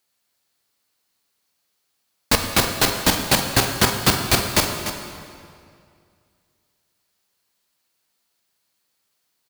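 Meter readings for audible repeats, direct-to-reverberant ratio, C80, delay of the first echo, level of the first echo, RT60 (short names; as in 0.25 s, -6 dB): 1, 3.0 dB, 5.0 dB, 0.296 s, -10.5 dB, 2.3 s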